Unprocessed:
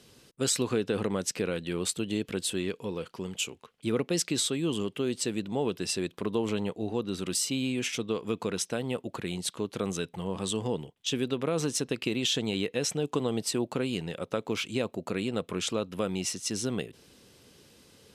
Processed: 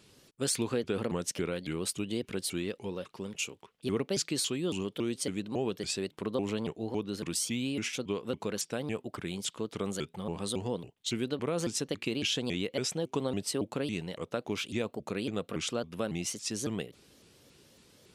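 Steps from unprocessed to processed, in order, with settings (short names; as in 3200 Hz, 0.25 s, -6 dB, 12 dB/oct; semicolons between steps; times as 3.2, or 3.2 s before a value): shaped vibrato saw up 3.6 Hz, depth 250 cents; gain -3 dB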